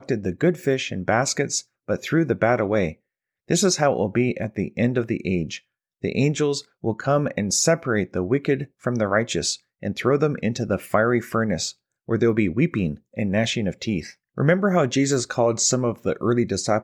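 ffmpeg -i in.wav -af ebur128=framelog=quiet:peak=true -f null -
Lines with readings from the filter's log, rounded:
Integrated loudness:
  I:         -22.7 LUFS
  Threshold: -32.8 LUFS
Loudness range:
  LRA:         1.9 LU
  Threshold: -43.0 LUFS
  LRA low:   -23.9 LUFS
  LRA high:  -22.0 LUFS
True peak:
  Peak:       -5.4 dBFS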